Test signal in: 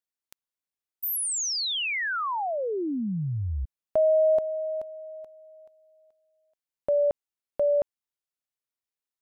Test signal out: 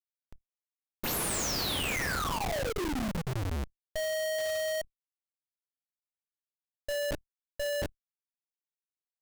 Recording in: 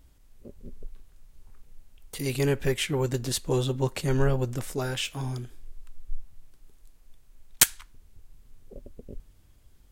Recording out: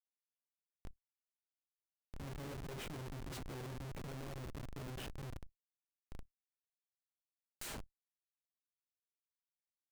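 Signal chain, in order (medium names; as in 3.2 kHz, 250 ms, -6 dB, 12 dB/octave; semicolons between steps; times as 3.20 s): two-slope reverb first 0.5 s, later 3.6 s, from -20 dB, DRR 2 dB; Schmitt trigger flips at -26.5 dBFS; level held to a coarse grid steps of 14 dB; trim -3.5 dB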